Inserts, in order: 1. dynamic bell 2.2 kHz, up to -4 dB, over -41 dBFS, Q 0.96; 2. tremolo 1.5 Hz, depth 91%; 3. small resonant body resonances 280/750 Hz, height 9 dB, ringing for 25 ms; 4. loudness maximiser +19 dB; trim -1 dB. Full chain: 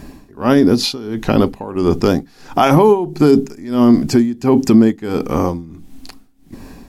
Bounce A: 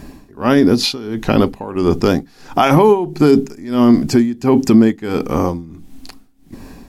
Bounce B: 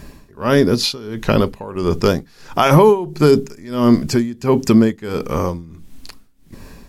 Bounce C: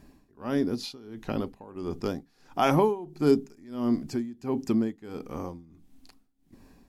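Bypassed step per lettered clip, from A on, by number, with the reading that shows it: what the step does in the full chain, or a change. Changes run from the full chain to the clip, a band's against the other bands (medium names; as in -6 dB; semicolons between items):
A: 1, 2 kHz band +2.0 dB; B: 3, 250 Hz band -4.5 dB; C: 4, crest factor change +6.5 dB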